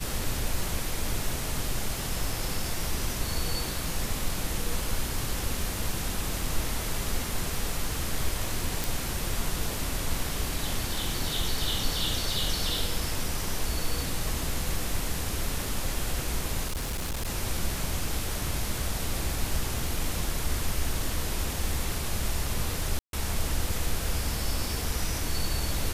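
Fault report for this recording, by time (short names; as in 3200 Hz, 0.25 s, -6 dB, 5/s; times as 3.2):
crackle 17/s -35 dBFS
8.84 pop
16.67–17.29 clipped -27.5 dBFS
22.99–23.13 gap 0.142 s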